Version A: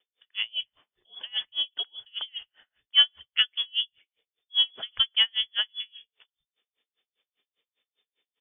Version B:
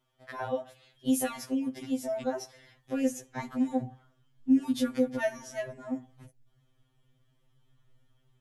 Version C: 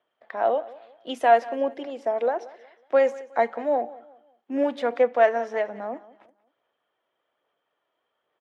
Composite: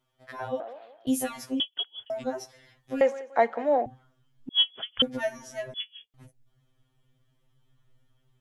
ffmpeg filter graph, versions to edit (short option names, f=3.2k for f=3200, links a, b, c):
-filter_complex "[2:a]asplit=2[a][b];[0:a]asplit=3[c][d][e];[1:a]asplit=6[f][g][h][i][j][k];[f]atrim=end=0.602[l];[a]atrim=start=0.598:end=1.072[m];[g]atrim=start=1.068:end=1.602[n];[c]atrim=start=1.598:end=2.102[o];[h]atrim=start=2.098:end=3.012[p];[b]atrim=start=3.008:end=3.862[q];[i]atrim=start=3.858:end=4.492[r];[d]atrim=start=4.488:end=5.022[s];[j]atrim=start=5.018:end=5.742[t];[e]atrim=start=5.738:end=6.142[u];[k]atrim=start=6.138[v];[l][m]acrossfade=d=0.004:c1=hsin:c2=hsin[w];[w][n]acrossfade=d=0.004:c1=hsin:c2=hsin[x];[x][o]acrossfade=d=0.004:c1=hsin:c2=hsin[y];[y][p]acrossfade=d=0.004:c1=hsin:c2=hsin[z];[z][q]acrossfade=d=0.004:c1=hsin:c2=hsin[aa];[aa][r]acrossfade=d=0.004:c1=hsin:c2=hsin[ab];[ab][s]acrossfade=d=0.004:c1=hsin:c2=hsin[ac];[ac][t]acrossfade=d=0.004:c1=hsin:c2=hsin[ad];[ad][u]acrossfade=d=0.004:c1=hsin:c2=hsin[ae];[ae][v]acrossfade=d=0.004:c1=hsin:c2=hsin"